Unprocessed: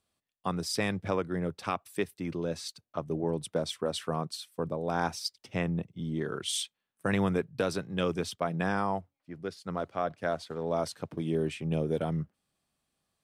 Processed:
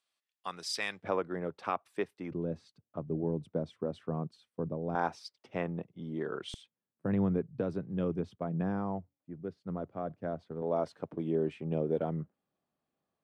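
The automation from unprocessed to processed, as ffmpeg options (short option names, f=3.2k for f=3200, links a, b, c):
-af "asetnsamples=n=441:p=0,asendcmd='1.02 bandpass f 770;2.31 bandpass f 190;4.95 bandpass f 660;6.54 bandpass f 180;10.62 bandpass f 450',bandpass=f=3k:t=q:w=0.56:csg=0"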